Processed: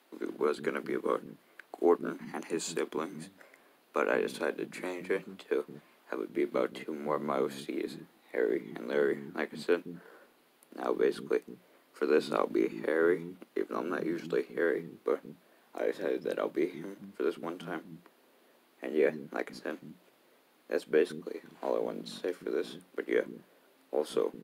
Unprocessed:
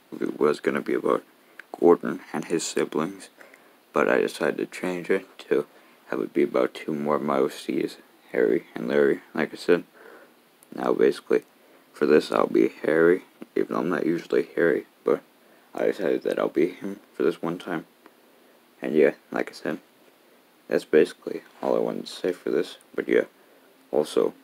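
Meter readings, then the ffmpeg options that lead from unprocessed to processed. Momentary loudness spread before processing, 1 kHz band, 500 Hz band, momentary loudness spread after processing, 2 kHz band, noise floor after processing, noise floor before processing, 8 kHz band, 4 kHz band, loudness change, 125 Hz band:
11 LU, -7.5 dB, -8.0 dB, 14 LU, -7.5 dB, -66 dBFS, -58 dBFS, n/a, -7.5 dB, -8.5 dB, -10.0 dB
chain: -filter_complex "[0:a]bandreject=f=60:t=h:w=6,bandreject=f=120:t=h:w=6,bandreject=f=180:t=h:w=6,acrossover=split=220[a][b];[a]adelay=170[c];[c][b]amix=inputs=2:normalize=0,volume=-7.5dB"

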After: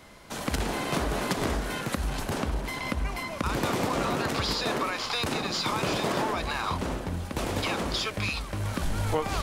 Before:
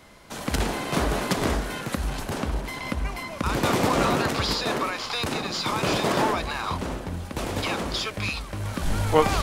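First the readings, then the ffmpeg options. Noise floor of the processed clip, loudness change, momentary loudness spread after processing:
-38 dBFS, -3.0 dB, 5 LU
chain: -af "acompressor=threshold=-24dB:ratio=6"

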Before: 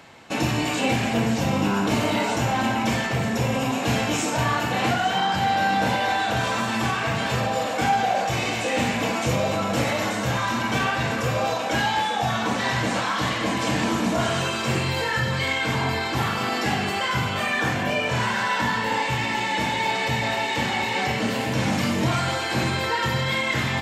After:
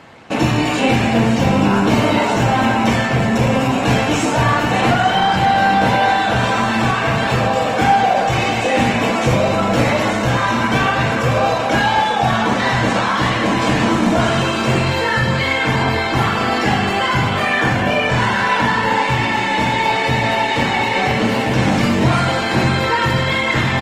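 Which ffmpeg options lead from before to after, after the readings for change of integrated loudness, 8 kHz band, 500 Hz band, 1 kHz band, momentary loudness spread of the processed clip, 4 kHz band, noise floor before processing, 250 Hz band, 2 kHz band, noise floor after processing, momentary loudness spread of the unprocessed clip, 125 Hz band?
+7.5 dB, +2.0 dB, +8.0 dB, +8.0 dB, 2 LU, +5.0 dB, -27 dBFS, +8.5 dB, +7.0 dB, -19 dBFS, 2 LU, +8.0 dB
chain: -af "highshelf=f=4.5k:g=-8.5,aecho=1:1:550|1100|1650|2200:0.251|0.0879|0.0308|0.0108,volume=8dB" -ar 48000 -c:a libopus -b:a 20k

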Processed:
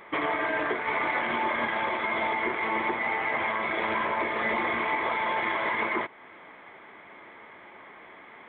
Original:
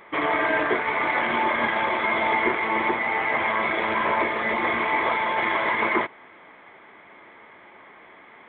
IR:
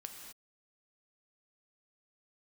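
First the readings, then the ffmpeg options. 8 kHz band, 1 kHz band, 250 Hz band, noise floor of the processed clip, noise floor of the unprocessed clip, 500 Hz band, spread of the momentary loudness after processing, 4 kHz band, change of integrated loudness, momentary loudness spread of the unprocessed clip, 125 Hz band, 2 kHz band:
n/a, -4.5 dB, -5.0 dB, -49 dBFS, -49 dBFS, -5.0 dB, 14 LU, -4.5 dB, -4.5 dB, 2 LU, -4.5 dB, -4.5 dB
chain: -af "alimiter=limit=-18dB:level=0:latency=1:release=359"

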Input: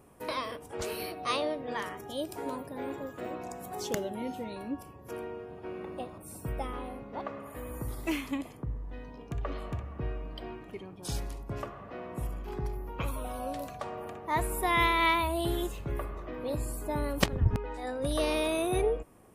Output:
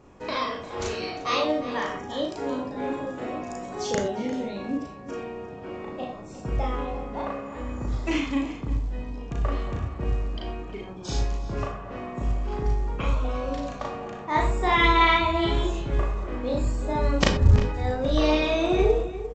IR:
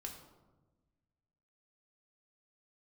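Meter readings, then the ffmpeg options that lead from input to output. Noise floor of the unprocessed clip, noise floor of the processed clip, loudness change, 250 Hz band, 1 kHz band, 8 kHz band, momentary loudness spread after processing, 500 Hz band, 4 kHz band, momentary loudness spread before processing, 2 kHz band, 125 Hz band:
-49 dBFS, -40 dBFS, +7.0 dB, +7.5 dB, +6.5 dB, +1.0 dB, 14 LU, +6.5 dB, +6.5 dB, 13 LU, +6.5 dB, +9.0 dB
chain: -filter_complex "[0:a]asplit=2[a][b];[b]adelay=349.9,volume=-13dB,highshelf=f=4k:g=-7.87[c];[a][c]amix=inputs=2:normalize=0,asplit=2[d][e];[1:a]atrim=start_sample=2205,atrim=end_sample=4410,adelay=36[f];[e][f]afir=irnorm=-1:irlink=0,volume=4.5dB[g];[d][g]amix=inputs=2:normalize=0,volume=3dB" -ar 16000 -c:a pcm_mulaw

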